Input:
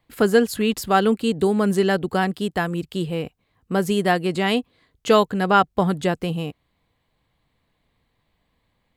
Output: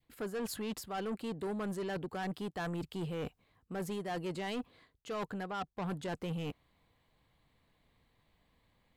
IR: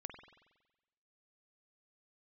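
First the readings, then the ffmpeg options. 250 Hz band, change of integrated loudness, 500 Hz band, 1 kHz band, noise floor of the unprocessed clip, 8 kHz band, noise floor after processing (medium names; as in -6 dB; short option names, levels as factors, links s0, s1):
-17.0 dB, -18.0 dB, -19.0 dB, -19.5 dB, -71 dBFS, -14.0 dB, -76 dBFS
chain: -af "adynamicequalizer=threshold=0.0355:dfrequency=970:dqfactor=0.72:tfrequency=970:tqfactor=0.72:attack=5:release=100:ratio=0.375:range=2.5:mode=boostabove:tftype=bell,areverse,acompressor=threshold=0.0447:ratio=16,areverse,asoftclip=type=tanh:threshold=0.0299,volume=0.75"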